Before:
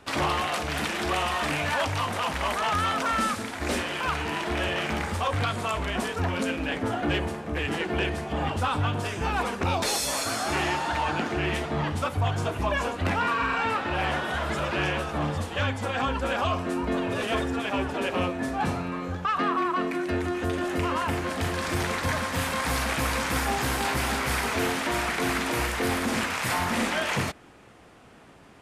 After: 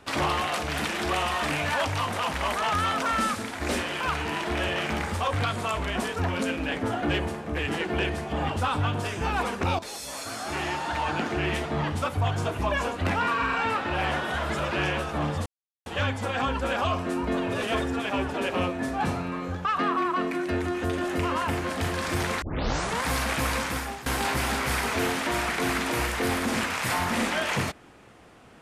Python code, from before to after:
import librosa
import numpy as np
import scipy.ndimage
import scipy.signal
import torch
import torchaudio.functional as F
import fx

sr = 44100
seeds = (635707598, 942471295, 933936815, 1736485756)

y = fx.edit(x, sr, fx.fade_in_from(start_s=9.79, length_s=1.47, floor_db=-13.5),
    fx.insert_silence(at_s=15.46, length_s=0.4),
    fx.tape_start(start_s=22.02, length_s=0.61),
    fx.fade_out_to(start_s=23.16, length_s=0.5, floor_db=-17.0), tone=tone)